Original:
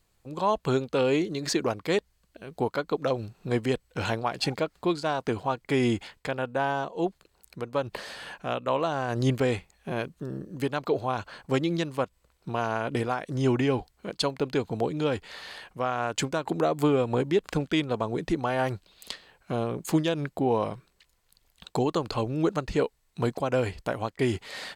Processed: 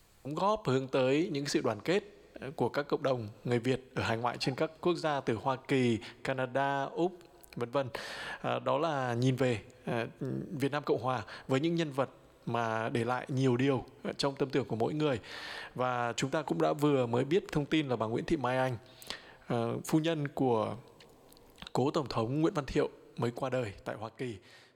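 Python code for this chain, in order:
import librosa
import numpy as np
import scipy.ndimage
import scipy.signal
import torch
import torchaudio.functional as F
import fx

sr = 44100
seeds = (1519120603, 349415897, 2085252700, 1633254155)

y = fx.fade_out_tail(x, sr, length_s=2.07)
y = fx.rev_double_slope(y, sr, seeds[0], early_s=0.55, late_s=3.2, knee_db=-16, drr_db=18.5)
y = fx.band_squash(y, sr, depth_pct=40)
y = y * librosa.db_to_amplitude(-4.0)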